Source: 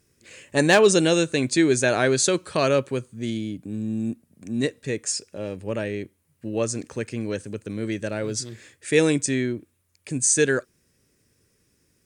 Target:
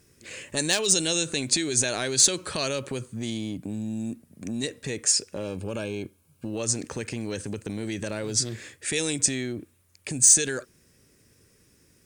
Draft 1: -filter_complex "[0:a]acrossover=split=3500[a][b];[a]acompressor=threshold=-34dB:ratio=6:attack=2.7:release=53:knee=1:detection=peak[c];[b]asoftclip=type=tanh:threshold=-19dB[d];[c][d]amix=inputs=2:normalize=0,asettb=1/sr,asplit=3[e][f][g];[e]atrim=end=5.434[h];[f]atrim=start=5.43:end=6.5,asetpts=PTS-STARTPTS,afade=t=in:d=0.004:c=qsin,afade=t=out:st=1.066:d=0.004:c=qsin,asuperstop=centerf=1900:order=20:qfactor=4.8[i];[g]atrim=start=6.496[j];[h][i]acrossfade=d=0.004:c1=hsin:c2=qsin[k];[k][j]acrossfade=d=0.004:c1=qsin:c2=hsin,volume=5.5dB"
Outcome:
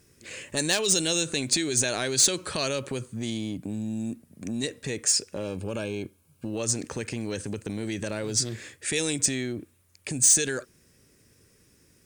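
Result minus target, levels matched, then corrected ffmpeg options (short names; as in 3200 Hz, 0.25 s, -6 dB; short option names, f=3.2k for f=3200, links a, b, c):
soft clip: distortion +10 dB
-filter_complex "[0:a]acrossover=split=3500[a][b];[a]acompressor=threshold=-34dB:ratio=6:attack=2.7:release=53:knee=1:detection=peak[c];[b]asoftclip=type=tanh:threshold=-11.5dB[d];[c][d]amix=inputs=2:normalize=0,asettb=1/sr,asplit=3[e][f][g];[e]atrim=end=5.434[h];[f]atrim=start=5.43:end=6.5,asetpts=PTS-STARTPTS,afade=t=in:d=0.004:c=qsin,afade=t=out:st=1.066:d=0.004:c=qsin,asuperstop=centerf=1900:order=20:qfactor=4.8[i];[g]atrim=start=6.496[j];[h][i]acrossfade=d=0.004:c1=hsin:c2=qsin[k];[k][j]acrossfade=d=0.004:c1=qsin:c2=hsin,volume=5.5dB"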